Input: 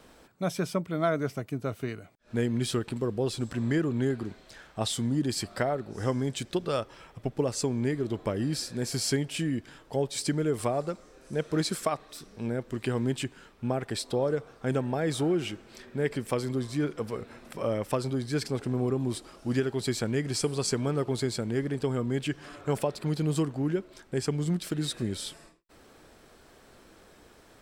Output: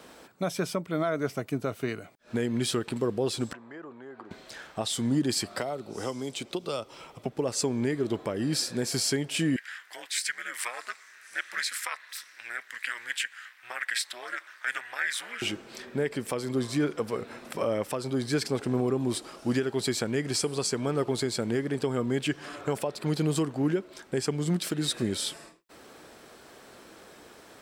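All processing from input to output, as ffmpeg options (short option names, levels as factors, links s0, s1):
-filter_complex "[0:a]asettb=1/sr,asplit=3[s0][s1][s2];[s0]atrim=end=3.534[s3];[s1]atrim=start=3.53:end=4.31,asetpts=PTS-STARTPTS,afade=t=in:d=0.004:c=qsin,afade=t=out:st=0.776:d=0.004:c=qsin,acompressor=threshold=0.02:ratio=6:attack=3.2:release=140:knee=1:detection=peak,bandpass=f=940:t=q:w=1.4[s4];[s2]atrim=start=4.306[s5];[s3][s4]acrossfade=d=0.004:c1=hsin:c2=qsin[s6];[s6][s5]acrossfade=d=0.004:c1=qsin:c2=hsin,asettb=1/sr,asplit=3[s7][s8][s9];[s7]atrim=end=5.594[s10];[s8]atrim=start=5.59:end=7.26,asetpts=PTS-STARTPTS,afade=t=in:d=0.004:c=qsin,afade=t=out:st=1.666:d=0.004:c=qsin,equalizer=f=1700:w=4.9:g=-11.5,acrossover=split=250|2900[s11][s12][s13];[s11]acompressor=threshold=0.00501:ratio=4[s14];[s12]acompressor=threshold=0.0141:ratio=4[s15];[s13]acompressor=threshold=0.00501:ratio=4[s16];[s14][s15][s16]amix=inputs=3:normalize=0[s17];[s9]atrim=start=7.256[s18];[s10][s17]acrossfade=d=0.004:c1=hsin:c2=qsin[s19];[s19][s18]acrossfade=d=0.004:c1=qsin:c2=hsin,asettb=1/sr,asplit=3[s20][s21][s22];[s20]atrim=end=9.564[s23];[s21]atrim=start=9.56:end=15.42,asetpts=PTS-STARTPTS,afade=t=in:d=0.004:c=qsin,afade=t=out:st=5.856:d=0.004:c=qsin,highpass=f=1800:t=q:w=5,aeval=exprs='val(0)*sin(2*PI*120*n/s)':c=same,highshelf=f=9900:g=6[s24];[s22]atrim=start=15.416[s25];[s23][s24]acrossfade=d=0.004:c1=hsin:c2=qsin[s26];[s26][s25]acrossfade=d=0.004:c1=qsin:c2=hsin,highpass=f=220:p=1,alimiter=limit=0.0708:level=0:latency=1:release=320,volume=2"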